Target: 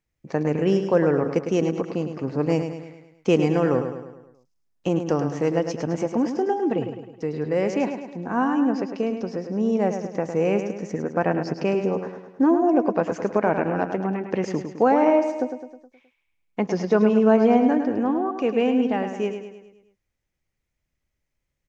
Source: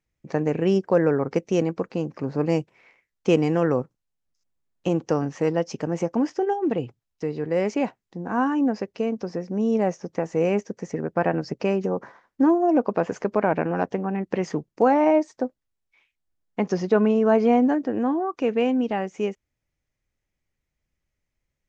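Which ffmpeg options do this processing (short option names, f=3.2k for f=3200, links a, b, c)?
-af "aecho=1:1:105|210|315|420|525|630:0.398|0.203|0.104|0.0528|0.0269|0.0137"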